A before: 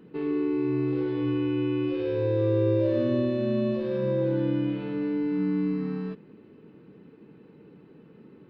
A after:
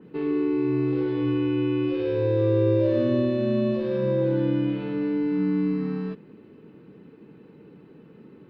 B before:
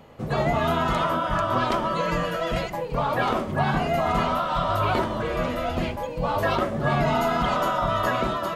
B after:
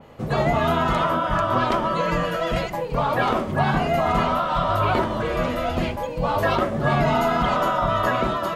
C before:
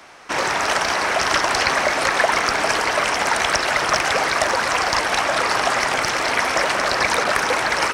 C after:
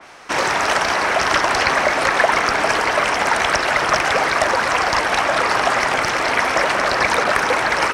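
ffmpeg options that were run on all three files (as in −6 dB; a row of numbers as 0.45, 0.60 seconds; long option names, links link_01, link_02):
-af "adynamicequalizer=threshold=0.0224:dfrequency=3300:dqfactor=0.7:tfrequency=3300:tqfactor=0.7:attack=5:release=100:ratio=0.375:range=2.5:mode=cutabove:tftype=highshelf,volume=2.5dB"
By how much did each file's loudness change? +2.5, +2.5, +1.5 LU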